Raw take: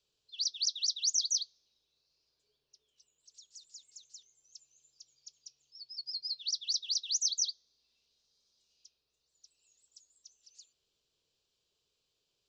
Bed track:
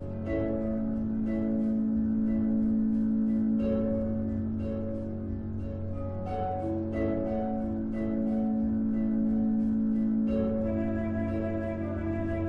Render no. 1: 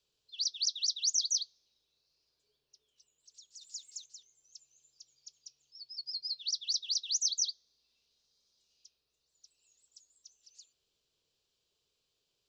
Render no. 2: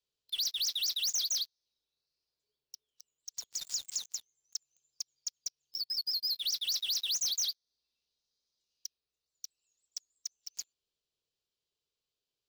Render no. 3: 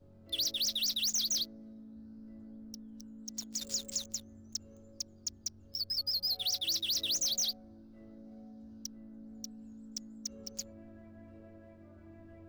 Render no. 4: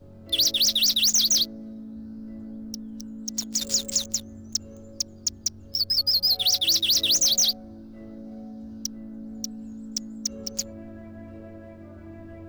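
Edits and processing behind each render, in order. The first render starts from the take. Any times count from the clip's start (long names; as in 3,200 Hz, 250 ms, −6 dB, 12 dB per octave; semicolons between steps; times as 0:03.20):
0:03.61–0:04.06: high-shelf EQ 2,000 Hz +8.5 dB
leveller curve on the samples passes 5; downward compressor 3 to 1, threshold −35 dBFS, peak gain reduction 11 dB
mix in bed track −23 dB
level +11.5 dB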